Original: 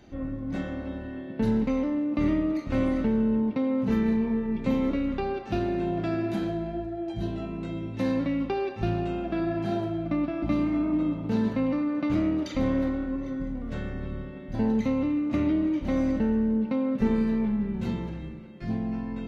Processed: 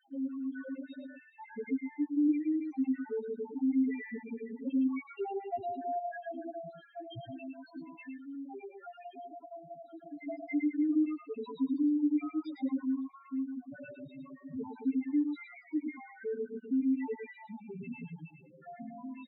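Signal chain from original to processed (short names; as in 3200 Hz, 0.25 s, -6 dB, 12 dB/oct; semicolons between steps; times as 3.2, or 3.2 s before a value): random spectral dropouts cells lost 59%; HPF 440 Hz 6 dB/oct; comb 7.2 ms, depth 90%; 7.85–10.19 compressor 4:1, threshold -44 dBFS, peak gain reduction 16.5 dB; loudest bins only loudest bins 2; echo 0.111 s -7 dB; dynamic EQ 570 Hz, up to -3 dB, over -46 dBFS, Q 0.71; gain +2 dB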